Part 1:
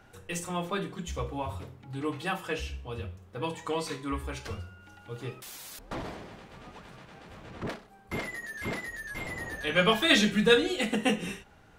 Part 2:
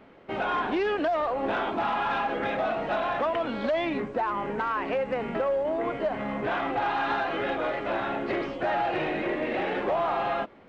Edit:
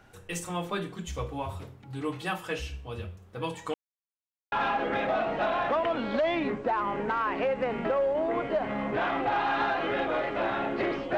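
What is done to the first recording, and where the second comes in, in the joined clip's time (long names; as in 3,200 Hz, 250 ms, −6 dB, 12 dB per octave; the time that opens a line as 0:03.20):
part 1
0:03.74–0:04.52: silence
0:04.52: continue with part 2 from 0:02.02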